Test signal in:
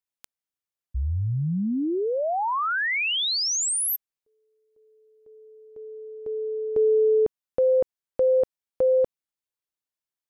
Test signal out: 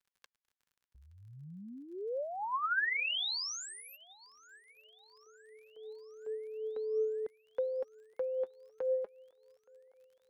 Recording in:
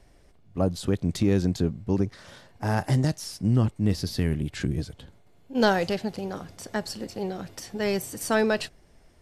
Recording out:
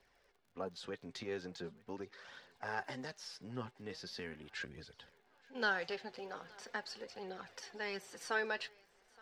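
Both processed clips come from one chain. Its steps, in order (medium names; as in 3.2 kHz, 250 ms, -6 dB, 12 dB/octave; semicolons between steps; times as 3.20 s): in parallel at +1 dB: compression, threshold -31 dBFS; on the sum: three-band isolator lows -21 dB, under 320 Hz, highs -21 dB, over 5.7 kHz; on a send: thinning echo 871 ms, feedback 61%, high-pass 410 Hz, level -24 dB; on the sum: flange 0.41 Hz, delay 0.2 ms, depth 8.1 ms, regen +43%; crackle 44 per s -51 dBFS; graphic EQ with 31 bands 315 Hz -10 dB, 630 Hz -7 dB, 1.6 kHz +4 dB; trim -8.5 dB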